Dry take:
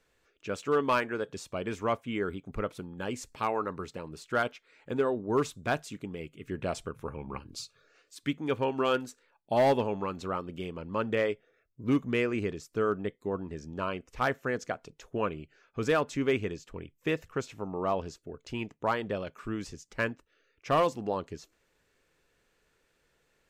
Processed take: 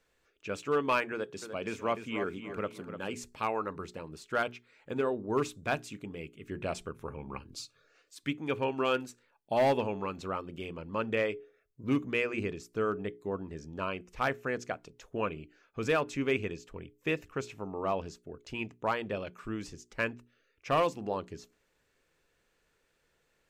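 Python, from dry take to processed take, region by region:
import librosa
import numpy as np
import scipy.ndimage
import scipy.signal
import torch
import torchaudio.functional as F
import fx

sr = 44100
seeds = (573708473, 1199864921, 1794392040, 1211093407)

y = fx.chain(x, sr, fx.highpass(hz=120.0, slope=12),
    fx.echo_feedback(ms=298, feedback_pct=30, wet_db=-9.0), at=(1.12, 3.14))
y = fx.hum_notches(y, sr, base_hz=60, count=7)
y = fx.dynamic_eq(y, sr, hz=2500.0, q=5.2, threshold_db=-56.0, ratio=4.0, max_db=6)
y = y * librosa.db_to_amplitude(-2.0)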